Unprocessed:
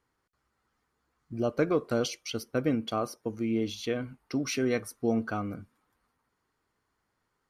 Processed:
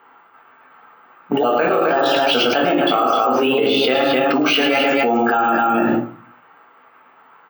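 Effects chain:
pitch shifter swept by a sawtooth +3.5 semitones, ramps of 716 ms
low-pass that shuts in the quiet parts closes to 2,200 Hz, open at −29.5 dBFS
noise gate −48 dBFS, range −21 dB
loudspeaker in its box 400–4,100 Hz, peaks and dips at 440 Hz −3 dB, 810 Hz +10 dB, 1,300 Hz +8 dB, 2,900 Hz +6 dB
loudspeakers that aren't time-aligned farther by 37 metres −7 dB, 89 metres −6 dB
rectangular room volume 220 cubic metres, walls furnished, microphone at 1.6 metres
bad sample-rate conversion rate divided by 2×, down filtered, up hold
envelope flattener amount 100%
level +5.5 dB

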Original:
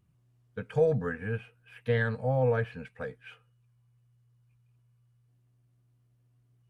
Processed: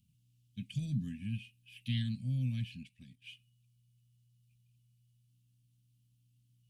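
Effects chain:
elliptic band-stop filter 230–2,900 Hz, stop band 40 dB
low-shelf EQ 220 Hz −10 dB
0:02.76–0:03.24: output level in coarse steps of 10 dB
level +5 dB

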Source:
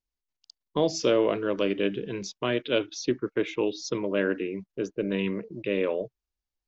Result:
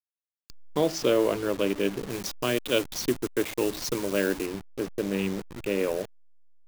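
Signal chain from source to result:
hold until the input has moved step −33 dBFS
0:02.10–0:04.46: high-shelf EQ 4,000 Hz +7.5 dB

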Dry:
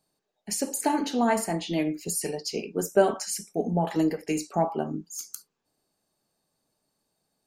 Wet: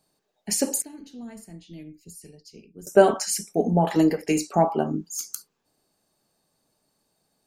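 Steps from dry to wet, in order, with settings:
0:00.82–0:02.87: guitar amp tone stack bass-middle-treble 10-0-1
level +5 dB

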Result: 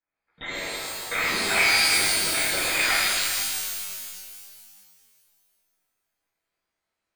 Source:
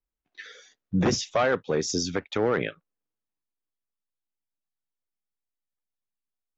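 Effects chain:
Butterworth high-pass 1,300 Hz 96 dB per octave
in parallel at −2 dB: downward compressor, threshold −45 dBFS, peak gain reduction 17 dB
on the sum: sine wavefolder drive 7 dB, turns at −17 dBFS
harmonic generator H 8 −14 dB, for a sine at −16.5 dBFS
shaped tremolo saw up 2.6 Hz, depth 50%
wrong playback speed 48 kHz file played as 44.1 kHz
voice inversion scrambler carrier 3,700 Hz
reverb with rising layers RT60 2.1 s, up +12 semitones, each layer −2 dB, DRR −9 dB
level −6 dB

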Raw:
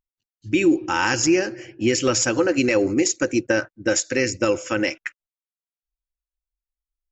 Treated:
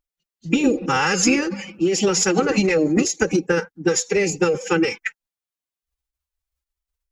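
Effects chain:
dynamic equaliser 310 Hz, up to +5 dB, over −31 dBFS, Q 2.2
downward compressor 16 to 1, threshold −19 dBFS, peak gain reduction 12.5 dB
phase-vocoder pitch shift with formants kept +7.5 semitones
level +5.5 dB

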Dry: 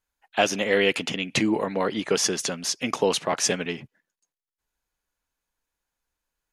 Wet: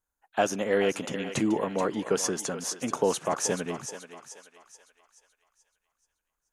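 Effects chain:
flat-topped bell 3,200 Hz −9 dB
feedback echo with a high-pass in the loop 431 ms, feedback 45%, high-pass 570 Hz, level −9.5 dB
level −2.5 dB

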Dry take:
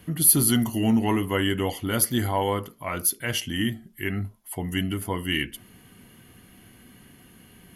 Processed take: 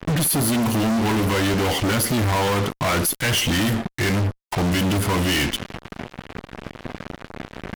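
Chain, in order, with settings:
low-pass that shuts in the quiet parts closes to 1,500 Hz, open at −20.5 dBFS
high-shelf EQ 6,300 Hz −10.5 dB, from 0:02.69 +2 dB
downward compressor 16 to 1, threshold −27 dBFS, peak gain reduction 11.5 dB
fuzz pedal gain 50 dB, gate −48 dBFS
level −5.5 dB

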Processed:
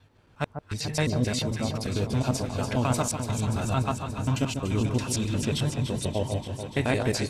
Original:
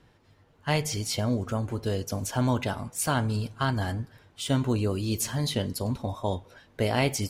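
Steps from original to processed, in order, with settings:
slices reordered back to front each 89 ms, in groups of 4
delay that swaps between a low-pass and a high-pass 145 ms, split 1,400 Hz, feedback 84%, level −6.5 dB
formants moved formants −3 semitones

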